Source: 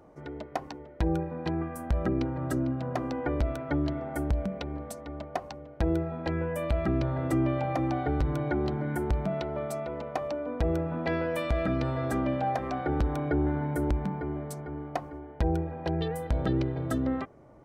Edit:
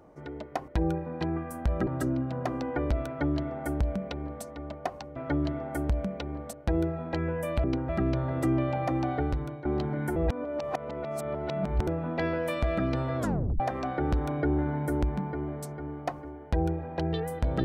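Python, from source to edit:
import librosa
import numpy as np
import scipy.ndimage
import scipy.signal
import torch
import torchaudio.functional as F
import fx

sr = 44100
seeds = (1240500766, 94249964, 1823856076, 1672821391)

y = fx.edit(x, sr, fx.cut(start_s=0.68, length_s=0.25),
    fx.move(start_s=2.12, length_s=0.25, to_s=6.77),
    fx.duplicate(start_s=3.57, length_s=1.37, to_s=5.66),
    fx.fade_out_to(start_s=8.08, length_s=0.45, floor_db=-15.5),
    fx.reverse_span(start_s=9.04, length_s=1.71),
    fx.tape_stop(start_s=12.07, length_s=0.41), tone=tone)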